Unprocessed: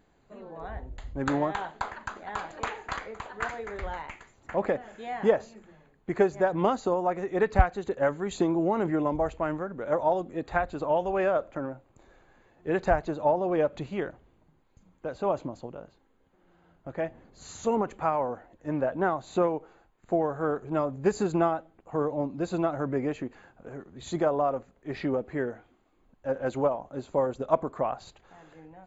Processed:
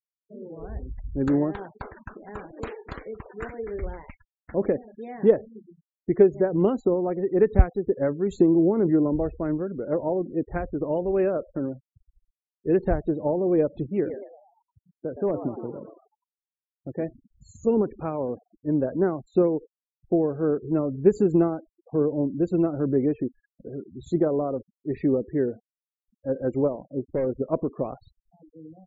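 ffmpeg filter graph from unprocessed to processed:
ffmpeg -i in.wav -filter_complex "[0:a]asettb=1/sr,asplit=3[link_01][link_02][link_03];[link_01]atrim=end=13.844[link_04];[link_02]atrim=start=13.84:end=17.03,asetpts=PTS-STARTPTS,afade=type=in:duration=0.004:curve=qsin,afade=type=out:start_time=3.186:duration=0.004:curve=qsin,highpass=60,asoftclip=type=hard:threshold=-19dB,asplit=8[link_05][link_06][link_07][link_08][link_09][link_10][link_11][link_12];[link_06]adelay=117,afreqshift=100,volume=-8dB[link_13];[link_07]adelay=234,afreqshift=200,volume=-12.6dB[link_14];[link_08]adelay=351,afreqshift=300,volume=-17.2dB[link_15];[link_09]adelay=468,afreqshift=400,volume=-21.7dB[link_16];[link_10]adelay=585,afreqshift=500,volume=-26.3dB[link_17];[link_11]adelay=702,afreqshift=600,volume=-30.9dB[link_18];[link_12]adelay=819,afreqshift=700,volume=-35.5dB[link_19];[link_05][link_13][link_14][link_15][link_16][link_17][link_18][link_19]amix=inputs=8:normalize=0,atrim=end_sample=140679[link_20];[link_03]atrim=start=17.026[link_21];[link_04][link_20]acrossfade=duration=0.004:curve1=hsin:curve2=qsin[link_22];[link_22][link_21]acrossfade=duration=0.004:curve1=qsin:curve2=hsin,asettb=1/sr,asplit=3[link_23][link_24][link_25];[link_23]atrim=end=26.724[link_26];[link_24]atrim=start=26.72:end=27.29,asetpts=PTS-STARTPTS,afade=type=in:duration=0.004:curve=qsin,afade=type=out:start_time=0.566:duration=0.004:curve=qsin,lowpass=1900,asoftclip=type=hard:threshold=-23dB[link_27];[link_25]atrim=start=27.286[link_28];[link_26][link_27]acrossfade=duration=0.004:curve1=hsin:curve2=qsin[link_29];[link_29][link_28]acrossfade=duration=0.004:curve1=qsin:curve2=hsin,afftfilt=real='re*gte(hypot(re,im),0.0141)':imag='im*gte(hypot(re,im),0.0141)':win_size=1024:overlap=0.75,lowshelf=frequency=570:width_type=q:width=1.5:gain=11,volume=-6dB" out.wav

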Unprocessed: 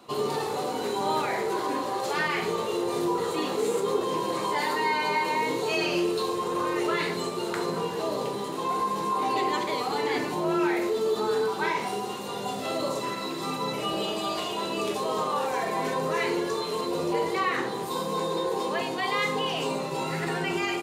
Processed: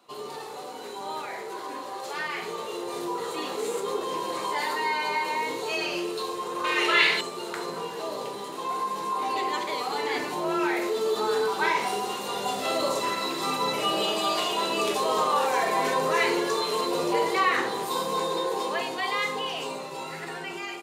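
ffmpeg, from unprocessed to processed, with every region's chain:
ffmpeg -i in.wav -filter_complex "[0:a]asettb=1/sr,asplit=3[link_01][link_02][link_03];[link_01]atrim=end=6.644[link_04];[link_02]atrim=start=6.64:end=7.21,asetpts=PTS-STARTPTS,afade=type=in:duration=0.004:curve=qsin,afade=type=out:start_time=0.566:duration=0.004:curve=qsin,equalizer=frequency=2700:width_type=o:width=1.8:gain=14.5,asplit=2[link_05][link_06];[link_06]adelay=48,volume=-4dB[link_07];[link_05][link_07]amix=inputs=2:normalize=0,atrim=end_sample=25137[link_08];[link_03]atrim=start=7.206[link_09];[link_04][link_08]acrossfade=duration=0.004:curve1=hsin:curve2=qsin[link_10];[link_10][link_09]acrossfade=duration=0.004:curve1=qsin:curve2=hsin,lowshelf=frequency=280:gain=-12,dynaudnorm=framelen=740:gausssize=9:maxgain=12.5dB,volume=-6.5dB" out.wav

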